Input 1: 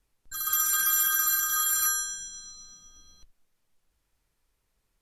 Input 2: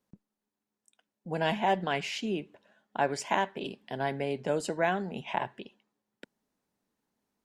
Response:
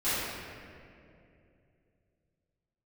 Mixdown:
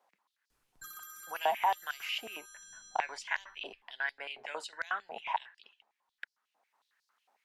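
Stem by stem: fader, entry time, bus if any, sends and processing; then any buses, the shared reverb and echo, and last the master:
-8.5 dB, 0.50 s, no send, compression 12:1, threshold -34 dBFS, peak gain reduction 13.5 dB; auto duck -9 dB, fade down 1.40 s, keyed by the second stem
-3.0 dB, 0.00 s, no send, treble shelf 3.5 kHz -10 dB; step-sequenced high-pass 11 Hz 750–4800 Hz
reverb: none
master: three bands compressed up and down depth 40%

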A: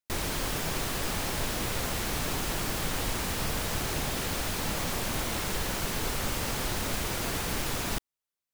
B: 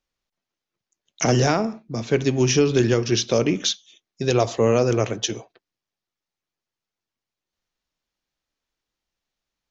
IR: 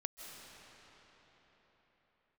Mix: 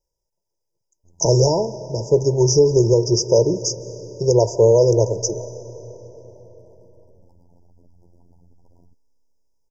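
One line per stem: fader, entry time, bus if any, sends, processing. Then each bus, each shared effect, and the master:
-20.0 dB, 0.95 s, send -23 dB, resonances exaggerated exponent 3; robot voice 86.9 Hz
-0.5 dB, 0.00 s, send -8.5 dB, comb 2 ms, depth 92%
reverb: on, pre-delay 120 ms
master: brick-wall FIR band-stop 1–4.7 kHz

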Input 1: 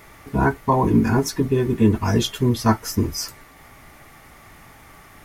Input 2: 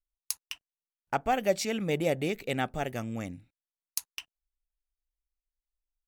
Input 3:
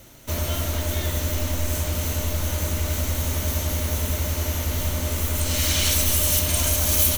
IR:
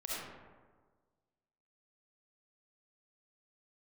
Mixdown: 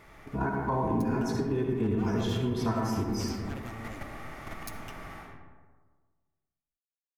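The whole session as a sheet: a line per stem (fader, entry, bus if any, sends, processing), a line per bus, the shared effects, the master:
-3.5 dB, 0.00 s, bus A, send -5 dB, level rider gain up to 9.5 dB; low-pass 3.4 kHz 6 dB/octave
-10.5 dB, 0.70 s, no bus, send -12 dB, comb filter that takes the minimum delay 7.6 ms
mute
bus A: 0.0 dB, level held to a coarse grid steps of 20 dB; peak limiter -18.5 dBFS, peak gain reduction 8.5 dB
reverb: on, RT60 1.5 s, pre-delay 25 ms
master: compression 2.5:1, threshold -30 dBFS, peak gain reduction 11 dB

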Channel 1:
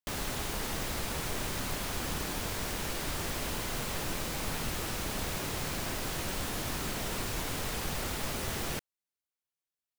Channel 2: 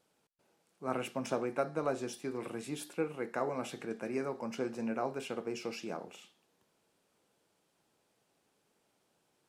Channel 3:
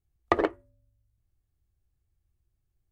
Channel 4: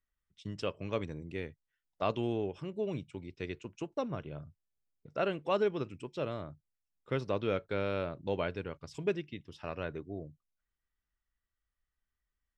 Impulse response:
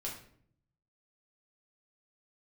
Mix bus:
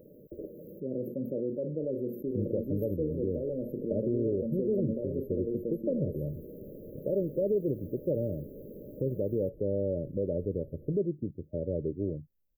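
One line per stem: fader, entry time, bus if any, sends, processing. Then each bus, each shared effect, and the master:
-17.5 dB, 2.20 s, no send, resonant low-pass 4.3 kHz; bass shelf 380 Hz -9 dB
-9.0 dB, 0.00 s, no send, peaking EQ 7.3 kHz -14.5 dB 2.2 oct; level flattener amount 70%
-3.0 dB, 0.00 s, no send, saturation -19.5 dBFS, distortion -7 dB; auto duck -17 dB, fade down 0.55 s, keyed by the second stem
+1.5 dB, 1.90 s, no send, compression 2:1, threshold -34 dBFS, peak gain reduction 5.5 dB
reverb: none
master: brick-wall FIR band-stop 620–12000 Hz; level rider gain up to 8 dB; peak limiter -20.5 dBFS, peak gain reduction 6 dB

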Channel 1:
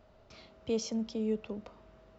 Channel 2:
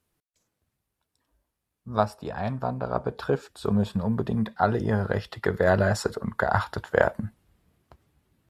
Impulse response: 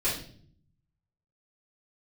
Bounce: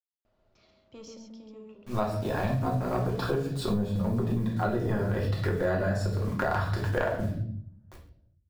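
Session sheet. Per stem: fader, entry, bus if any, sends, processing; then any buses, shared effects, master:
-12.5 dB, 0.25 s, send -13.5 dB, echo send -5 dB, saturation -26.5 dBFS, distortion -17 dB; auto duck -12 dB, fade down 0.65 s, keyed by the second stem
+0.5 dB, 0.00 s, send -3.5 dB, echo send -16.5 dB, transient shaper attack -10 dB, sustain -6 dB; bit crusher 9-bit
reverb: on, RT60 0.55 s, pre-delay 3 ms
echo: delay 136 ms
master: compression 10:1, threshold -24 dBFS, peak gain reduction 15 dB

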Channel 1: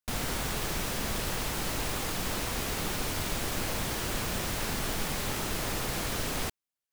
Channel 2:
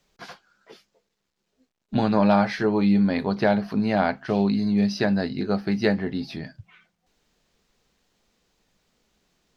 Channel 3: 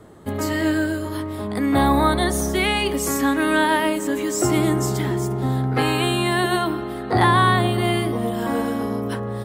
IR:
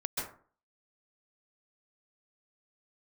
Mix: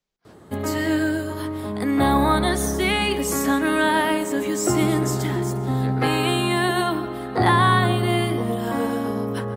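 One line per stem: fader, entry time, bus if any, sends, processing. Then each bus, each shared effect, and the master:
mute
-18.0 dB, 0.00 s, send -9 dB, attacks held to a fixed rise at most 370 dB/s
-2.0 dB, 0.25 s, send -16 dB, high-pass 60 Hz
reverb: on, RT60 0.45 s, pre-delay 123 ms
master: none

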